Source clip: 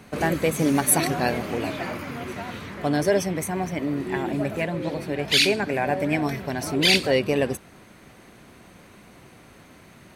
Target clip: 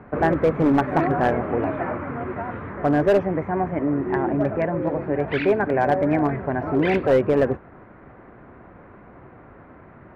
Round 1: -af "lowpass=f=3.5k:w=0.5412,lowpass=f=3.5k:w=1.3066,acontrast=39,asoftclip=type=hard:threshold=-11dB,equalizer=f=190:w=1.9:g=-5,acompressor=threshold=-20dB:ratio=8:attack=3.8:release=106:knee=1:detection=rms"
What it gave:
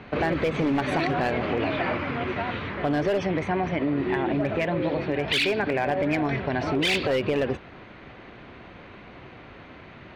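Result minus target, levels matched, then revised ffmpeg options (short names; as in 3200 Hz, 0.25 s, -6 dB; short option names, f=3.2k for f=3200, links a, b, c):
4000 Hz band +16.0 dB; compressor: peak gain reduction +7.5 dB
-af "lowpass=f=1.6k:w=0.5412,lowpass=f=1.6k:w=1.3066,acontrast=39,asoftclip=type=hard:threshold=-11dB,equalizer=f=190:w=1.9:g=-5"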